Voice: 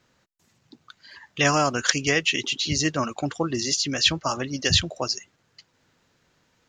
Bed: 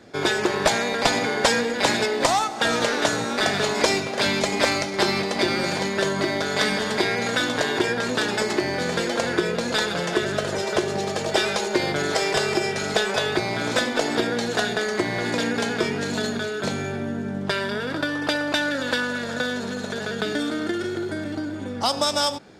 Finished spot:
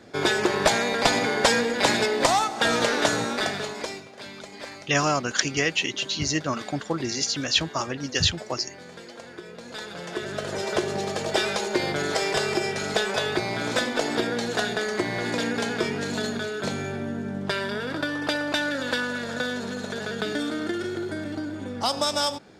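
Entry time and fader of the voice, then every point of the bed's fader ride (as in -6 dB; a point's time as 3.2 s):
3.50 s, -2.0 dB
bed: 3.24 s -0.5 dB
4.15 s -18.5 dB
9.41 s -18.5 dB
10.67 s -2.5 dB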